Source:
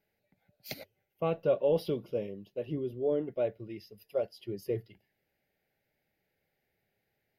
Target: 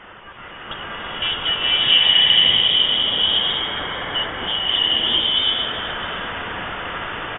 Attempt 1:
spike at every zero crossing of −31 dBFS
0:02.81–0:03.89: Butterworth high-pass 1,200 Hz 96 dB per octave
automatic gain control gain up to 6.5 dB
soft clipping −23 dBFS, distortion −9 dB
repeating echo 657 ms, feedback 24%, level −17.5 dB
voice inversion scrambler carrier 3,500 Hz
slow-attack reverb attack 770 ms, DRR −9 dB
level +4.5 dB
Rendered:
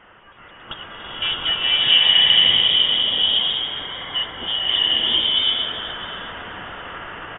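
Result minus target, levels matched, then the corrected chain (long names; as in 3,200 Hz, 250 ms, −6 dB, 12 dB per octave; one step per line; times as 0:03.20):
spike at every zero crossing: distortion −9 dB
spike at every zero crossing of −21.5 dBFS
0:02.81–0:03.89: Butterworth high-pass 1,200 Hz 96 dB per octave
automatic gain control gain up to 6.5 dB
soft clipping −23 dBFS, distortion −10 dB
repeating echo 657 ms, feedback 24%, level −17.5 dB
voice inversion scrambler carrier 3,500 Hz
slow-attack reverb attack 770 ms, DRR −9 dB
level +4.5 dB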